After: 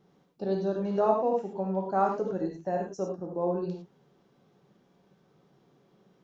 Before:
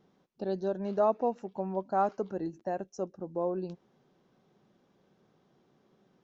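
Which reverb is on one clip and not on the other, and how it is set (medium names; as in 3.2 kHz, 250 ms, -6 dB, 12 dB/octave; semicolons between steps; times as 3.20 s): gated-style reverb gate 130 ms flat, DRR 0 dB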